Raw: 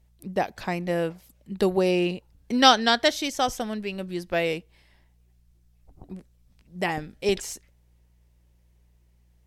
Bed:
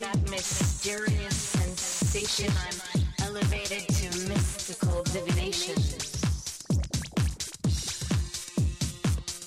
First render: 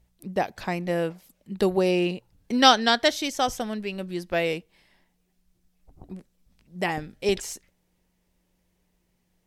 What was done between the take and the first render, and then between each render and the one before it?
hum removal 60 Hz, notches 2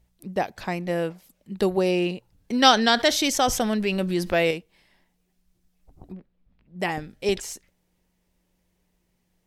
0:02.73–0:04.51: envelope flattener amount 50%
0:06.12–0:06.80: high-frequency loss of the air 360 metres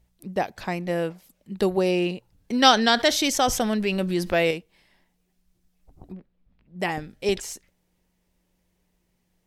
no processing that can be heard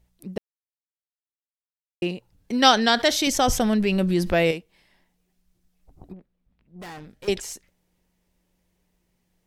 0:00.38–0:02.02: silence
0:03.27–0:04.52: low-shelf EQ 200 Hz +8.5 dB
0:06.13–0:07.28: tube saturation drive 37 dB, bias 0.6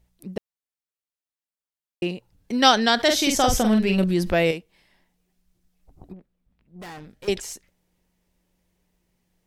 0:03.03–0:04.04: double-tracking delay 46 ms −5 dB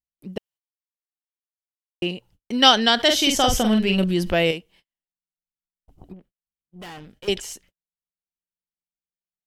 noise gate −53 dBFS, range −38 dB
parametric band 3,000 Hz +10.5 dB 0.2 octaves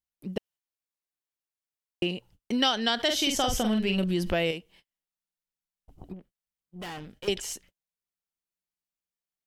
downward compressor 3 to 1, threshold −25 dBFS, peak gain reduction 12.5 dB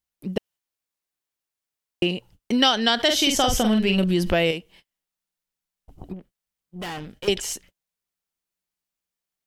level +6 dB

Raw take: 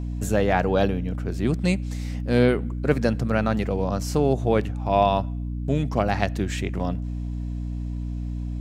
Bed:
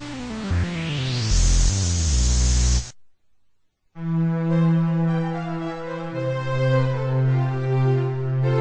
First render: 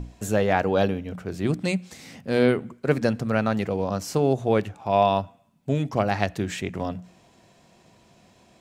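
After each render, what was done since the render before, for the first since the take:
mains-hum notches 60/120/180/240/300 Hz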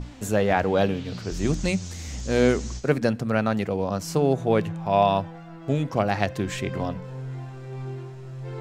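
mix in bed −14.5 dB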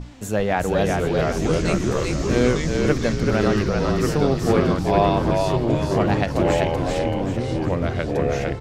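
on a send: echo with shifted repeats 384 ms, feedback 43%, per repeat −37 Hz, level −3 dB
on the sum: delay with pitch and tempo change per echo 591 ms, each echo −3 semitones, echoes 2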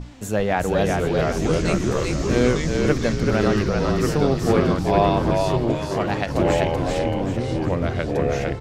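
0:05.72–0:06.29: low-shelf EQ 470 Hz −6.5 dB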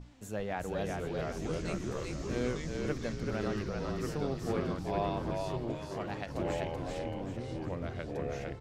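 level −15 dB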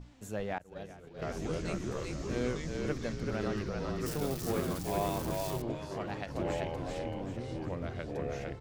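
0:00.58–0:01.22: downward expander −27 dBFS
0:04.06–0:05.62: spike at every zero crossing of −31 dBFS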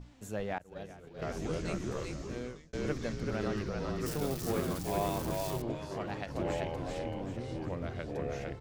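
0:02.01–0:02.73: fade out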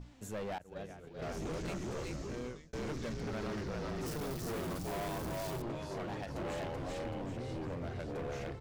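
hard clipping −36 dBFS, distortion −7 dB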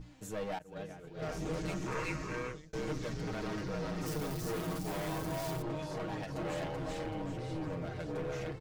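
0:01.86–0:02.52: gain on a spectral selection 880–2,800 Hz +9 dB
comb filter 6.4 ms

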